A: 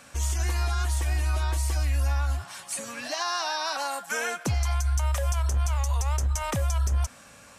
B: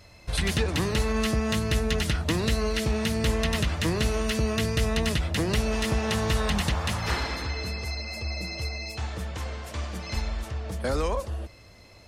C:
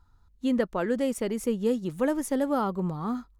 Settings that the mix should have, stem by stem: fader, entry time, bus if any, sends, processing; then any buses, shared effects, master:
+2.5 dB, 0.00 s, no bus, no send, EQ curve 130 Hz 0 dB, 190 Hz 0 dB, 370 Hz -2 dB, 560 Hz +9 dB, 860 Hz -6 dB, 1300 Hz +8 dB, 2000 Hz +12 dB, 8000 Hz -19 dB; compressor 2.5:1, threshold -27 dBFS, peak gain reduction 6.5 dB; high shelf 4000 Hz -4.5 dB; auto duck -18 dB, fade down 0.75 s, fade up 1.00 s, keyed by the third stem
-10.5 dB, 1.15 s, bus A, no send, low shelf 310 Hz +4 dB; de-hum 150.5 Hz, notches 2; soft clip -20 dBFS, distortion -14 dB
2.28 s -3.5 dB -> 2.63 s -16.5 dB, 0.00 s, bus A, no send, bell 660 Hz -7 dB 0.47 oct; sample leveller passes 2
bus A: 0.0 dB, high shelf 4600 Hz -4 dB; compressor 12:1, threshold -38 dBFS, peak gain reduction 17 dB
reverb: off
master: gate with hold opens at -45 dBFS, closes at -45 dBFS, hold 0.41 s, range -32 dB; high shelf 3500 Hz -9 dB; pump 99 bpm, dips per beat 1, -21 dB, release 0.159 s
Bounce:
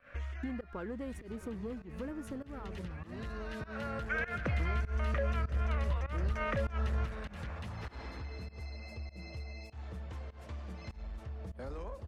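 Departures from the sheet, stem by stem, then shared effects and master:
stem A +2.5 dB -> -4.0 dB; stem B: entry 1.15 s -> 0.75 s

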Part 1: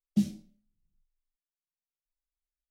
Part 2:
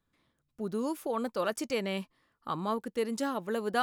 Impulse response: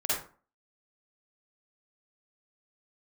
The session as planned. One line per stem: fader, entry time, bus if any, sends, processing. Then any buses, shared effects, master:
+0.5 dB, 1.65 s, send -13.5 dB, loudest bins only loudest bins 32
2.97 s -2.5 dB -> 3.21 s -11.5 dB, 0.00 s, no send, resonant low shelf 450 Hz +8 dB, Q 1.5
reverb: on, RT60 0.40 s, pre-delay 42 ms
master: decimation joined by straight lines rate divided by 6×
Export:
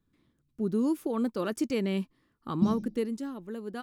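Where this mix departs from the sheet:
stem 1: entry 1.65 s -> 2.45 s; master: missing decimation joined by straight lines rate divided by 6×

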